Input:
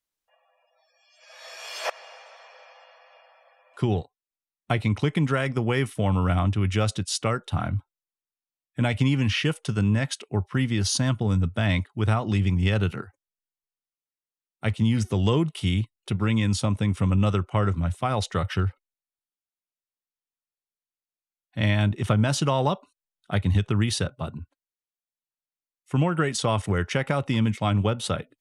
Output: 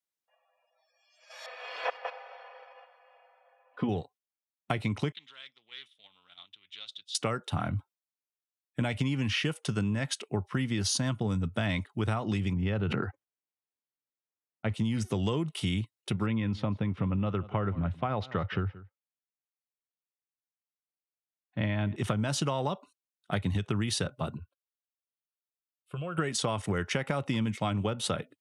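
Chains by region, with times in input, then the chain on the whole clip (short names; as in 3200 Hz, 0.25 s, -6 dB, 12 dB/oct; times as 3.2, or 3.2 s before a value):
1.46–3.89 reverse delay 0.128 s, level -8 dB + air absorption 380 m + comb 4 ms, depth 78%
5.12–7.15 band-pass 3500 Hz, Q 9.5 + Doppler distortion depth 0.15 ms
12.53–14.72 expander -34 dBFS + tape spacing loss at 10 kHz 27 dB + sustainer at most 31 dB/s
16.26–21.96 air absorption 330 m + echo 0.176 s -21.5 dB
24.36–26.18 fixed phaser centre 1300 Hz, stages 8 + compressor 12:1, threshold -31 dBFS
whole clip: HPF 110 Hz; gate -50 dBFS, range -7 dB; compressor, threshold -26 dBFS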